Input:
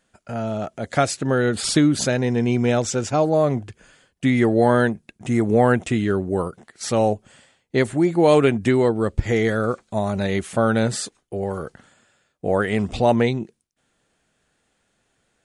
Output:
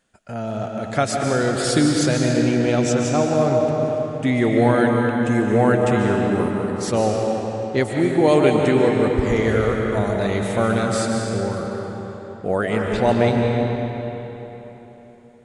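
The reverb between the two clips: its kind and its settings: algorithmic reverb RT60 3.8 s, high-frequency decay 0.75×, pre-delay 100 ms, DRR 0 dB; trim -1.5 dB

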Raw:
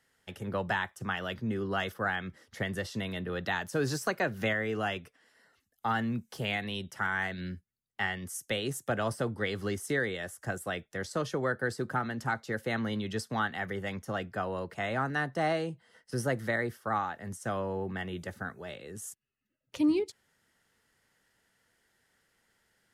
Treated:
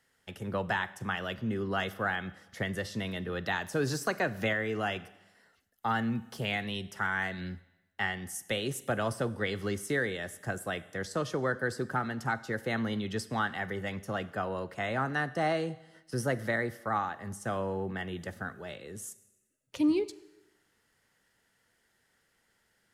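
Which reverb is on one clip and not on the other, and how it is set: Schroeder reverb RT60 0.99 s, combs from 31 ms, DRR 16.5 dB

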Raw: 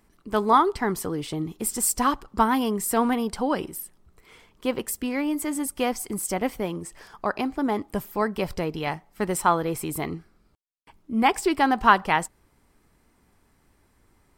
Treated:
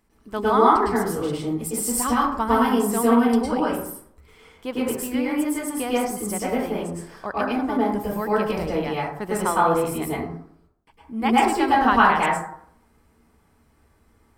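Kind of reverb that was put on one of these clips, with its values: plate-style reverb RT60 0.65 s, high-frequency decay 0.4×, pre-delay 95 ms, DRR -6.5 dB; trim -5 dB

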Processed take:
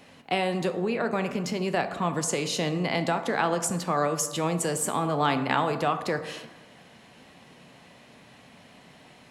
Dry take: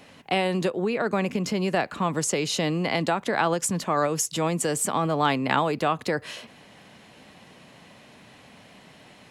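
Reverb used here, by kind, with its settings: plate-style reverb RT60 1.2 s, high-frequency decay 0.45×, DRR 8 dB; trim -2.5 dB

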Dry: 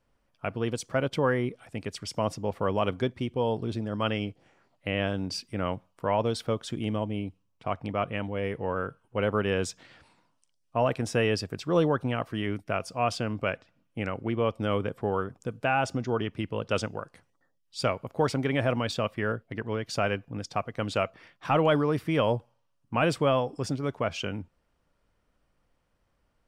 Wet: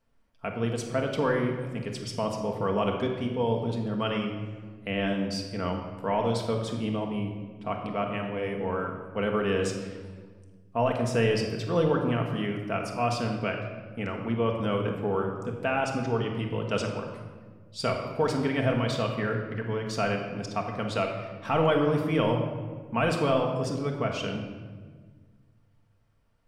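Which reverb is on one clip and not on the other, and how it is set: simulated room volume 1600 m³, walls mixed, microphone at 1.6 m; trim -2.5 dB

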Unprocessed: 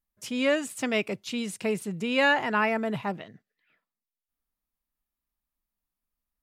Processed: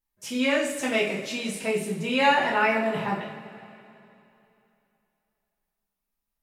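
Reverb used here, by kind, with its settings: two-slope reverb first 0.44 s, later 2.9 s, from -17 dB, DRR -6 dB; trim -3.5 dB

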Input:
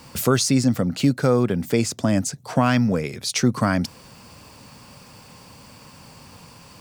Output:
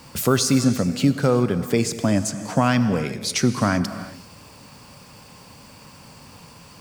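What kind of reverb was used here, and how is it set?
gated-style reverb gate 410 ms flat, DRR 10 dB

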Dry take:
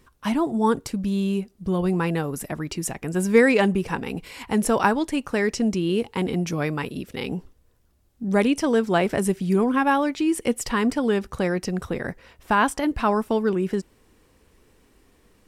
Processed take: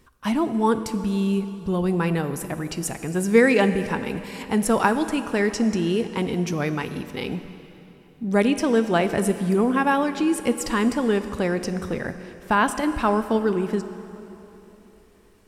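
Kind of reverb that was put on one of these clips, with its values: plate-style reverb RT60 3.3 s, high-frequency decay 0.85×, DRR 10 dB

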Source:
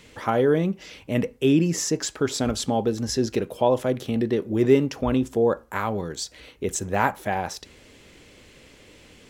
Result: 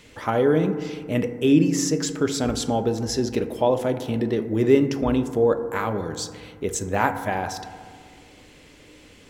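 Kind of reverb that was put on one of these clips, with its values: FDN reverb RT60 1.9 s, low-frequency decay 1.2×, high-frequency decay 0.25×, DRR 8.5 dB

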